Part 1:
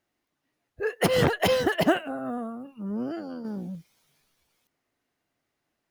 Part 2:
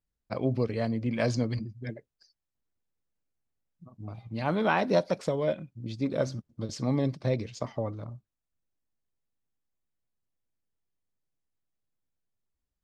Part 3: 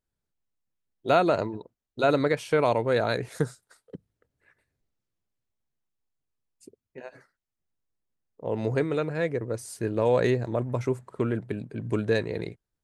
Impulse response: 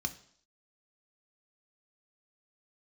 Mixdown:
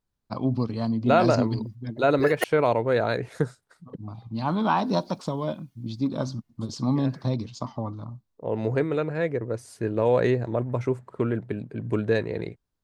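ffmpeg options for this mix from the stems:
-filter_complex "[0:a]highshelf=frequency=5100:gain=5.5,aecho=1:1:2.8:0.83,adelay=1400,volume=0.5dB,asplit=3[link_01][link_02][link_03];[link_01]atrim=end=2.44,asetpts=PTS-STARTPTS,afade=type=out:start_time=2.436:duration=0.004:curve=hsin[link_04];[link_02]atrim=start=2.44:end=4.65,asetpts=PTS-STARTPTS,volume=0[link_05];[link_03]atrim=start=4.65,asetpts=PTS-STARTPTS,afade=type=in:duration=0.004:curve=hsin[link_06];[link_04][link_05][link_06]concat=n=3:v=0:a=1[link_07];[1:a]equalizer=frequency=125:width_type=o:width=1:gain=3,equalizer=frequency=250:width_type=o:width=1:gain=7,equalizer=frequency=500:width_type=o:width=1:gain=-8,equalizer=frequency=1000:width_type=o:width=1:gain=12,equalizer=frequency=2000:width_type=o:width=1:gain=-12,equalizer=frequency=4000:width_type=o:width=1:gain=7,volume=-1dB[link_08];[2:a]lowpass=frequency=3100:poles=1,volume=1.5dB,asplit=2[link_09][link_10];[link_10]apad=whole_len=322148[link_11];[link_07][link_11]sidechaingate=range=-11dB:threshold=-52dB:ratio=16:detection=peak[link_12];[link_12][link_08][link_09]amix=inputs=3:normalize=0"

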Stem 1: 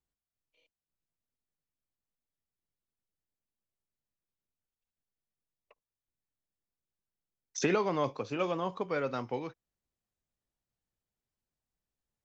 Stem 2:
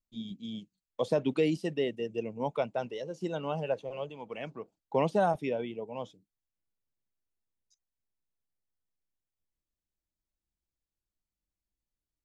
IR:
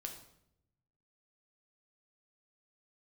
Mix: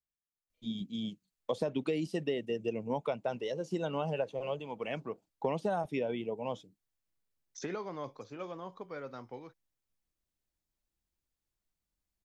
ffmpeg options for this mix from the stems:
-filter_complex "[0:a]equalizer=frequency=2700:width_type=o:width=0.27:gain=-8.5,volume=-10dB[link_01];[1:a]adelay=500,volume=2.5dB[link_02];[link_01][link_02]amix=inputs=2:normalize=0,acompressor=threshold=-29dB:ratio=6"

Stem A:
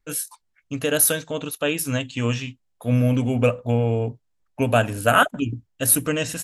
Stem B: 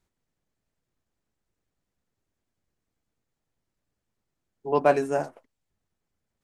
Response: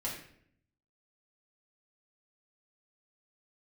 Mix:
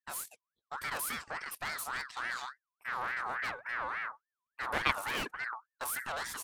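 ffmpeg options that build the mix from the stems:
-filter_complex "[0:a]aeval=exprs='(tanh(22.4*val(0)+0.45)-tanh(0.45))/22.4':channel_layout=same,volume=-5dB[link_01];[1:a]aeval=exprs='0.422*(cos(1*acos(clip(val(0)/0.422,-1,1)))-cos(1*PI/2))+0.119*(cos(3*acos(clip(val(0)/0.422,-1,1)))-cos(3*PI/2))':channel_layout=same,volume=-3.5dB[link_02];[link_01][link_02]amix=inputs=2:normalize=0,agate=range=-15dB:threshold=-48dB:ratio=16:detection=peak,aeval=exprs='val(0)*sin(2*PI*1400*n/s+1400*0.3/3.5*sin(2*PI*3.5*n/s))':channel_layout=same"

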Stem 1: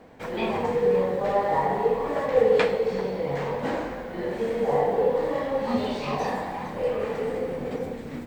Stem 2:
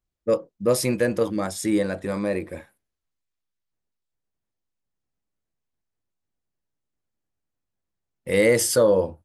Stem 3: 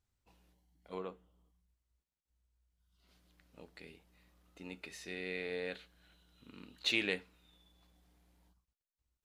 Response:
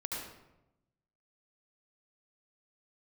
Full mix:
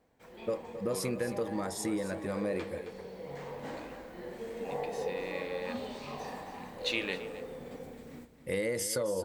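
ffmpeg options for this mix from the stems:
-filter_complex "[0:a]highshelf=frequency=5800:gain=11,volume=-14dB,afade=type=in:start_time=2.8:duration=0.67:silence=0.446684,asplit=2[link_01][link_02];[link_02]volume=-9.5dB[link_03];[1:a]acompressor=threshold=-23dB:ratio=6,adelay=200,volume=-6.5dB,asplit=2[link_04][link_05];[link_05]volume=-12.5dB[link_06];[2:a]volume=-0.5dB,asplit=2[link_07][link_08];[link_08]volume=-16.5dB[link_09];[link_03][link_06][link_09]amix=inputs=3:normalize=0,aecho=0:1:267:1[link_10];[link_01][link_04][link_07][link_10]amix=inputs=4:normalize=0"

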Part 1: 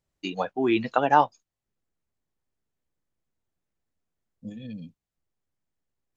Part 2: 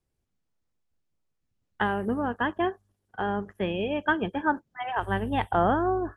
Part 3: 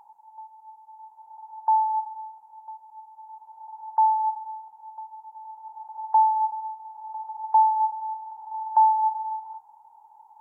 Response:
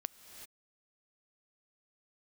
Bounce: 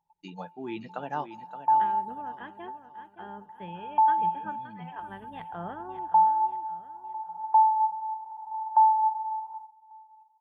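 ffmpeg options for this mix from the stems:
-filter_complex "[0:a]volume=-15dB,asplit=3[link_01][link_02][link_03];[link_02]volume=-16.5dB[link_04];[link_03]volume=-9.5dB[link_05];[1:a]lowshelf=frequency=230:gain=-10.5,volume=-16dB,asplit=3[link_06][link_07][link_08];[link_07]volume=-17dB[link_09];[link_08]volume=-10dB[link_10];[2:a]agate=range=-28dB:threshold=-47dB:ratio=16:detection=peak,volume=-1.5dB,asplit=2[link_11][link_12];[link_12]volume=-23.5dB[link_13];[3:a]atrim=start_sample=2205[link_14];[link_04][link_09]amix=inputs=2:normalize=0[link_15];[link_15][link_14]afir=irnorm=-1:irlink=0[link_16];[link_05][link_10][link_13]amix=inputs=3:normalize=0,aecho=0:1:571|1142|1713|2284|2855:1|0.38|0.144|0.0549|0.0209[link_17];[link_01][link_06][link_11][link_16][link_17]amix=inputs=5:normalize=0,equalizer=frequency=170:width_type=o:width=0.36:gain=14.5"

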